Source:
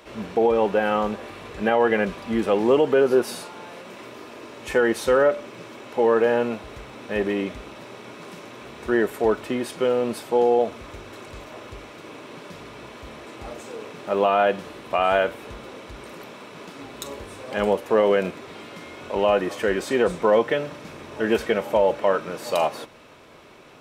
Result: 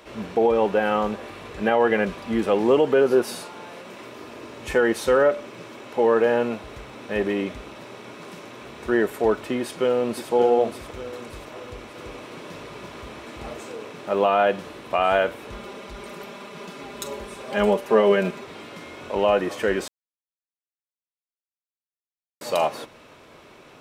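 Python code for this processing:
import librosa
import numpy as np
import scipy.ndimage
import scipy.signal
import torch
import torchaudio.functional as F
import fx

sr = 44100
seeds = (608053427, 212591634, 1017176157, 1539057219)

y = fx.low_shelf(x, sr, hz=150.0, db=7.5, at=(4.2, 4.75))
y = fx.echo_throw(y, sr, start_s=9.59, length_s=0.73, ms=580, feedback_pct=45, wet_db=-8.0)
y = fx.echo_single(y, sr, ms=336, db=-3.5, at=(11.62, 13.73))
y = fx.comb(y, sr, ms=5.0, depth=0.65, at=(15.52, 18.44))
y = fx.edit(y, sr, fx.silence(start_s=19.88, length_s=2.53), tone=tone)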